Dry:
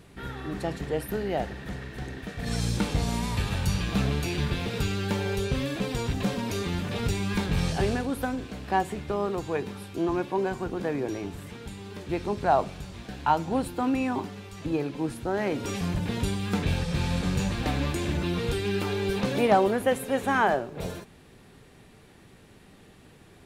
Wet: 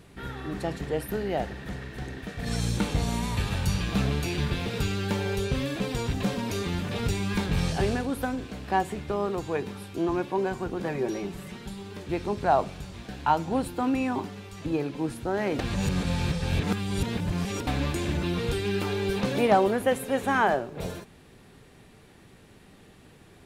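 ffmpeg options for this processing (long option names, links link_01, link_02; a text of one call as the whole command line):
ffmpeg -i in.wav -filter_complex "[0:a]asettb=1/sr,asplit=3[link_01][link_02][link_03];[link_01]atrim=end=2.574[link_04];[link_02]atrim=start=2.57:end=3.4,asetpts=PTS-STARTPTS,afade=type=in:duration=0.004:curve=qsin,afade=type=out:start_time=0.826:duration=0.004:curve=qsin,bandreject=frequency=5000:width=12[link_05];[link_03]atrim=start=3.396[link_06];[link_04][link_05]acrossfade=duration=0.004:curve1=hsin:curve2=qsin[link_07];[link_07][link_06]acrossfade=duration=0.004:curve1=qsin:curve2=hsin,asettb=1/sr,asplit=3[link_08][link_09][link_10];[link_08]atrim=end=10.854[link_11];[link_09]atrim=start=10.85:end=11.83,asetpts=PTS-STARTPTS,afade=type=in:duration=0.004:curve=qsin,afade=type=out:start_time=0.976:duration=0.004:curve=qsin,aecho=1:1:5.3:0.65,atrim=end_sample=43218[link_12];[link_10]atrim=start=11.826[link_13];[link_11][link_12]acrossfade=duration=0.004:curve1=hsin:curve2=qsin[link_14];[link_14][link_13]acrossfade=duration=0.004:curve1=qsin:curve2=hsin,asplit=3[link_15][link_16][link_17];[link_15]atrim=end=15.592[link_18];[link_16]atrim=start=15.588:end=17.672,asetpts=PTS-STARTPTS,areverse[link_19];[link_17]atrim=start=17.668[link_20];[link_18][link_19]acrossfade=duration=0.004:curve1=hsin:curve2=hsin[link_21];[link_21][link_20]acrossfade=duration=0.004:curve1=hsin:curve2=hsin" out.wav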